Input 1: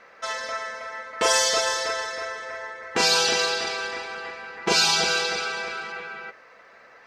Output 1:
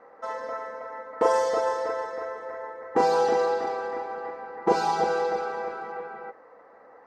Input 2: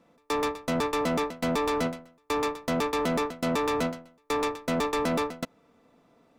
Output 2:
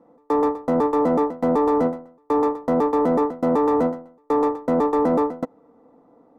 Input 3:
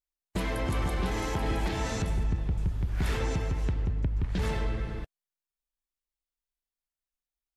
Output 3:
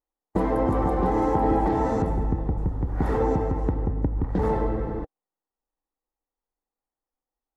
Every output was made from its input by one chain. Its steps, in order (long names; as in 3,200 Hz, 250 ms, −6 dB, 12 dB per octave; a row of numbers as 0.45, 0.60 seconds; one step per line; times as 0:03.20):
high shelf with overshoot 1,700 Hz −13 dB, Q 1.5
hollow resonant body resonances 300/480/780/1,900 Hz, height 11 dB, ringing for 25 ms
normalise the peak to −9 dBFS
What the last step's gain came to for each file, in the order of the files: −6.0, −0.5, +2.0 decibels